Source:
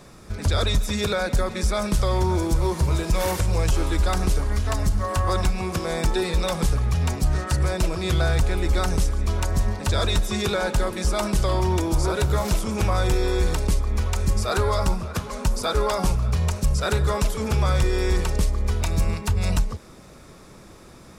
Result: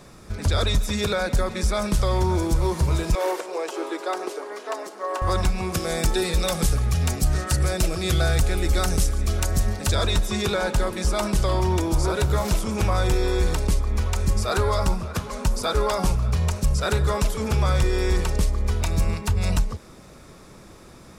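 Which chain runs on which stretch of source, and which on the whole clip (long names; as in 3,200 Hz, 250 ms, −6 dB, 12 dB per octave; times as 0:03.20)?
0:03.15–0:05.22: elliptic high-pass filter 360 Hz, stop band 80 dB + spectral tilt −2.5 dB per octave
0:05.74–0:09.95: high-shelf EQ 5,800 Hz +8.5 dB + notch filter 980 Hz, Q 6.5
whole clip: no processing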